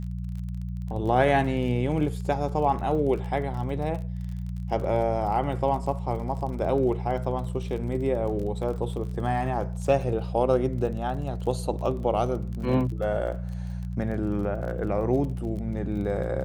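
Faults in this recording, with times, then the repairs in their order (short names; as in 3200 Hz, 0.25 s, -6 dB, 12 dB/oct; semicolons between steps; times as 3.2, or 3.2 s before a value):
crackle 31/s -35 dBFS
hum 60 Hz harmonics 3 -32 dBFS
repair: de-click; de-hum 60 Hz, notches 3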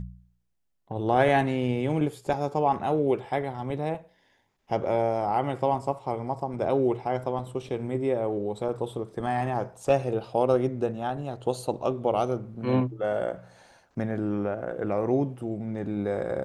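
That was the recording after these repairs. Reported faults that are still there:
none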